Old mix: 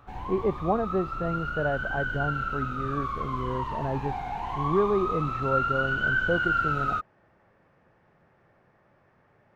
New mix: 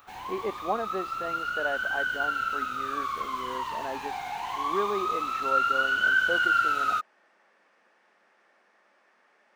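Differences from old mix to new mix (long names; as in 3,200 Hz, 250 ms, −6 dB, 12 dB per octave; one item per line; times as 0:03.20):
speech: add linear-phase brick-wall high-pass 180 Hz
master: add spectral tilt +4.5 dB per octave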